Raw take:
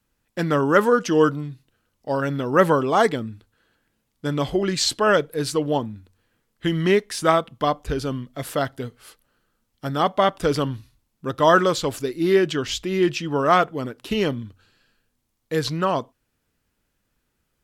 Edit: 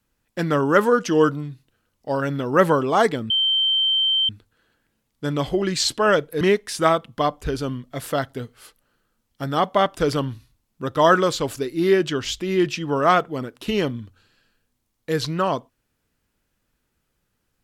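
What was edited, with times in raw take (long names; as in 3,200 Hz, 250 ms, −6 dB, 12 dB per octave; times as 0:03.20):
0:03.30: insert tone 3,120 Hz −16.5 dBFS 0.99 s
0:05.42–0:06.84: remove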